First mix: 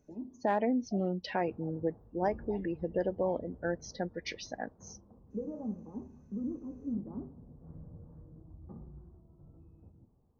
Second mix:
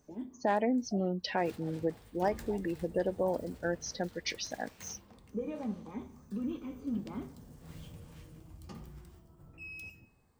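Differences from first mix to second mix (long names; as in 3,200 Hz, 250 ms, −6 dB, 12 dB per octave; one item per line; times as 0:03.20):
speech: add high-shelf EQ 4,000 Hz +10.5 dB
background: remove Gaussian smoothing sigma 9.8 samples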